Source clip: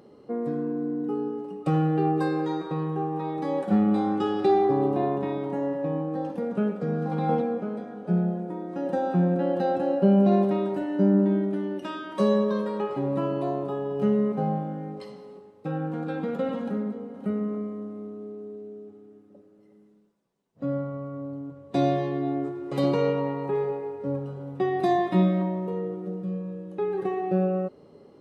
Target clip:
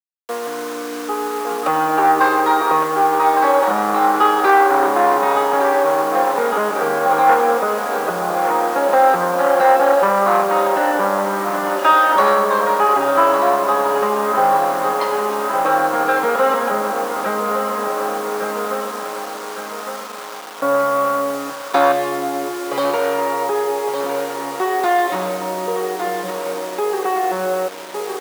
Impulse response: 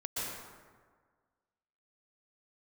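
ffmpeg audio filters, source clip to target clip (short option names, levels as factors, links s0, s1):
-af "acontrast=44,asoftclip=type=tanh:threshold=0.158,aecho=1:1:1158|2316|3474|4632|5790|6948|8106:0.316|0.183|0.106|0.0617|0.0358|0.0208|0.012,alimiter=limit=0.0891:level=0:latency=1:release=240,dynaudnorm=f=560:g=5:m=2.24,aeval=exprs='sgn(val(0))*max(abs(val(0))-0.00944,0)':c=same,asetnsamples=n=441:p=0,asendcmd='21.92 equalizer g 5.5',equalizer=f=1200:w=0.75:g=14.5,acrusher=bits=5:mix=0:aa=0.000001,highpass=500,volume=1.5"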